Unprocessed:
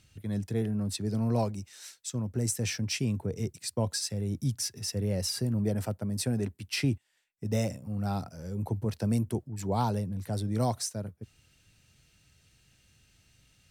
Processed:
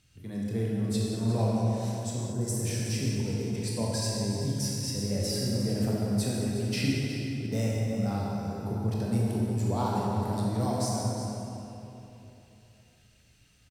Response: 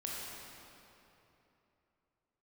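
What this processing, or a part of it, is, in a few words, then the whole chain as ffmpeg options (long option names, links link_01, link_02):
cave: -filter_complex "[0:a]aecho=1:1:364:0.237[link_01];[1:a]atrim=start_sample=2205[link_02];[link_01][link_02]afir=irnorm=-1:irlink=0,asettb=1/sr,asplit=3[link_03][link_04][link_05];[link_03]atrim=end=2.324[link_06];[link_04]atrim=start=2.32:end=3.55,asetpts=PTS-STARTPTS,afade=type=in:duration=0.004:curve=qsin,afade=type=out:start_time=1.226:duration=0.004:curve=qsin,equalizer=frequency=2800:width_type=o:width=1.6:gain=-6[link_07];[link_05]atrim=start=3.546[link_08];[link_06][link_07]acrossfade=duration=0.004:curve1=hsin:curve2=qsin[link_09];[link_09][link_08]acrossfade=duration=0.004:curve1=qsin:curve2=hsin"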